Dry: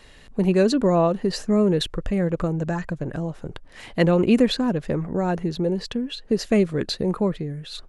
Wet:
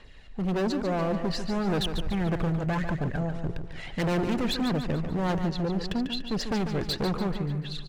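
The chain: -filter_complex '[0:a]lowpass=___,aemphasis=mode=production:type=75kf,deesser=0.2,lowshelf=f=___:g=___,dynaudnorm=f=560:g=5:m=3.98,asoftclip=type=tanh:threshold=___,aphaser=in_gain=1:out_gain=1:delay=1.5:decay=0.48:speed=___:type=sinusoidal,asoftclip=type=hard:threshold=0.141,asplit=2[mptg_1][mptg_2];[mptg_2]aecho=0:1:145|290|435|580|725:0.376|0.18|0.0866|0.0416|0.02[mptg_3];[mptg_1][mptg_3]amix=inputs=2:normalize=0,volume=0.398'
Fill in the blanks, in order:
3.1k, 130, 4, 0.266, 1.7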